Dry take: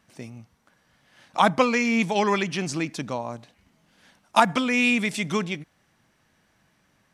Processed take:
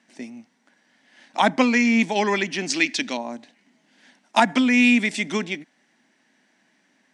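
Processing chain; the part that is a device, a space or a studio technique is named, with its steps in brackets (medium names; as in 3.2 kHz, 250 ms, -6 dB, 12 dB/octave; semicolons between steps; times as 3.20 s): 2.70–3.17 s: frequency weighting D; television speaker (cabinet simulation 220–8800 Hz, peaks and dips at 250 Hz +7 dB, 490 Hz -5 dB, 1.2 kHz -9 dB, 1.9 kHz +5 dB); trim +2 dB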